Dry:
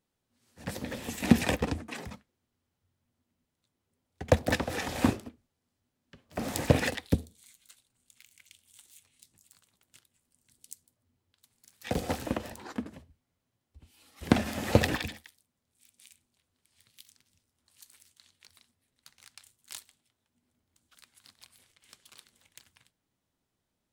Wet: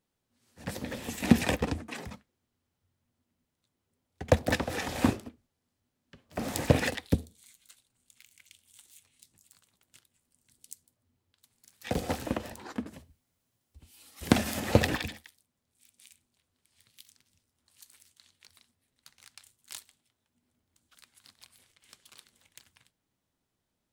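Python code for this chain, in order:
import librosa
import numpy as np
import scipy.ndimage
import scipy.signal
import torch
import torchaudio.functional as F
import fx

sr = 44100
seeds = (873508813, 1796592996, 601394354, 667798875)

y = fx.high_shelf(x, sr, hz=4700.0, db=9.5, at=(12.87, 14.6))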